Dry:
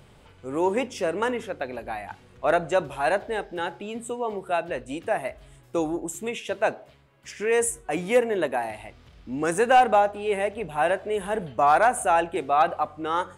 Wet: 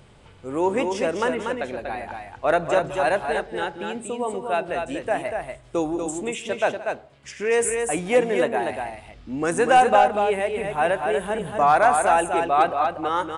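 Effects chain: multi-tap echo 171/240 ms -18/-5 dB; resampled via 22.05 kHz; trim +1.5 dB

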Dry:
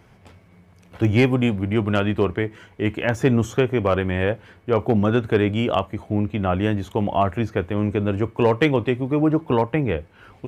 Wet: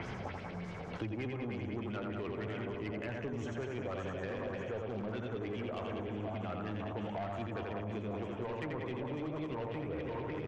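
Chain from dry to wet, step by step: backward echo that repeats 274 ms, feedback 76%, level -11 dB; delay 154 ms -20.5 dB; reverse; compression 6:1, threshold -30 dBFS, peak gain reduction 16.5 dB; reverse; LFO low-pass sine 3.3 Hz 620–6800 Hz; on a send: loudspeakers at several distances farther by 29 m -4 dB, 65 m -7 dB; on the sum: saturation -25 dBFS, distortion -15 dB; three bands compressed up and down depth 100%; trim -7.5 dB

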